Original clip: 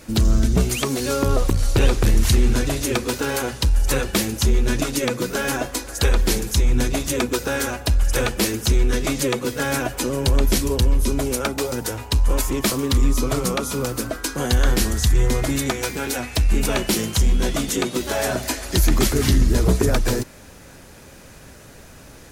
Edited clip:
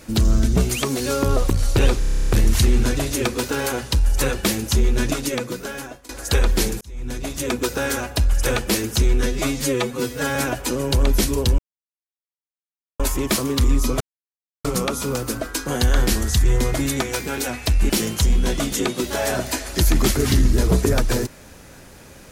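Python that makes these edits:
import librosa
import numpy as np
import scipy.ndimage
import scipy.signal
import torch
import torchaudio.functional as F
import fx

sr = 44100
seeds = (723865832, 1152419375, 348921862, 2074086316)

y = fx.edit(x, sr, fx.stutter(start_s=1.99, slice_s=0.03, count=11),
    fx.fade_out_to(start_s=4.79, length_s=1.0, floor_db=-22.5),
    fx.fade_in_span(start_s=6.51, length_s=0.85),
    fx.stretch_span(start_s=8.96, length_s=0.73, factor=1.5),
    fx.silence(start_s=10.92, length_s=1.41),
    fx.insert_silence(at_s=13.34, length_s=0.64),
    fx.cut(start_s=16.59, length_s=0.27), tone=tone)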